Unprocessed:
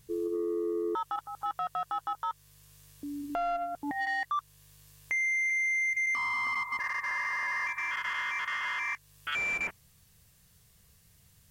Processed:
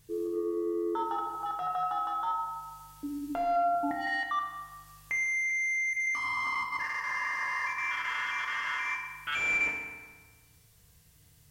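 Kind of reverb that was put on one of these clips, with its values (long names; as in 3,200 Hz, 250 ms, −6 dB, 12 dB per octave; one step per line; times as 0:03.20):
feedback delay network reverb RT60 1.5 s, low-frequency decay 0.95×, high-frequency decay 0.7×, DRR 0 dB
level −2 dB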